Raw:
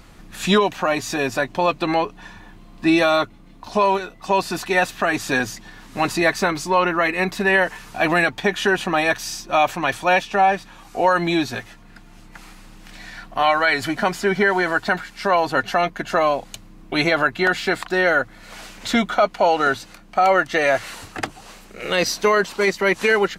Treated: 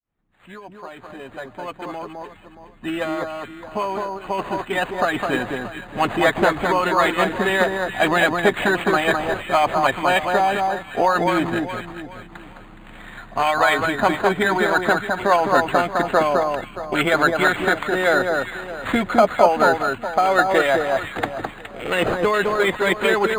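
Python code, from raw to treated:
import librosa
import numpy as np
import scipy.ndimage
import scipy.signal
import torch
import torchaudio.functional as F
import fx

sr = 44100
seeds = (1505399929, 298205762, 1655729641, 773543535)

p1 = fx.fade_in_head(x, sr, length_s=6.86)
p2 = p1 + fx.echo_alternate(p1, sr, ms=209, hz=1600.0, feedback_pct=56, wet_db=-3.0, dry=0)
p3 = fx.hpss(p2, sr, part='percussive', gain_db=7)
p4 = np.interp(np.arange(len(p3)), np.arange(len(p3))[::8], p3[::8])
y = p4 * 10.0 ** (-3.0 / 20.0)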